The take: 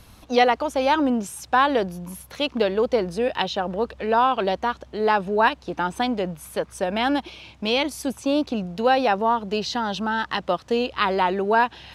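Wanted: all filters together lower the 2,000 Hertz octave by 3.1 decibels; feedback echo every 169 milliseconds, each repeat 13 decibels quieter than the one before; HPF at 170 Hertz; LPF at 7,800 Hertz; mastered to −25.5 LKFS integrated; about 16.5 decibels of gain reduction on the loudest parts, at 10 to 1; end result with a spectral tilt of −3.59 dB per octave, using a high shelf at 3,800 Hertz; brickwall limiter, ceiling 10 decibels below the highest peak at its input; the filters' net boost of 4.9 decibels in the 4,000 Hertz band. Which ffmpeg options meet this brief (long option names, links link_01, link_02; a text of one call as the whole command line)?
ffmpeg -i in.wav -af "highpass=170,lowpass=7800,equalizer=frequency=2000:width_type=o:gain=-7,highshelf=frequency=3800:gain=4.5,equalizer=frequency=4000:width_type=o:gain=6.5,acompressor=threshold=-29dB:ratio=10,alimiter=level_in=0.5dB:limit=-24dB:level=0:latency=1,volume=-0.5dB,aecho=1:1:169|338|507:0.224|0.0493|0.0108,volume=10dB" out.wav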